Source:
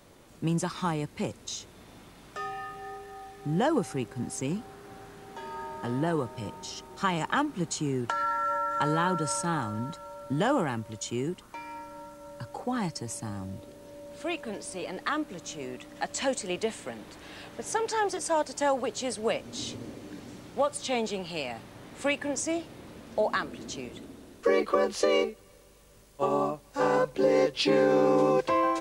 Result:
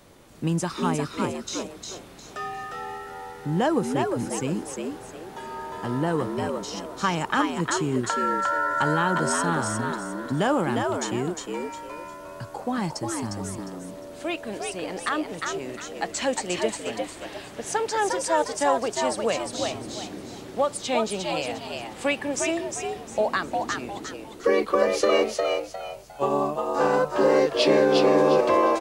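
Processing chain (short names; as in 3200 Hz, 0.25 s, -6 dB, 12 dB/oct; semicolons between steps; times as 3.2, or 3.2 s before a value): frequency-shifting echo 0.355 s, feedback 30%, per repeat +83 Hz, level -4 dB; gain +3 dB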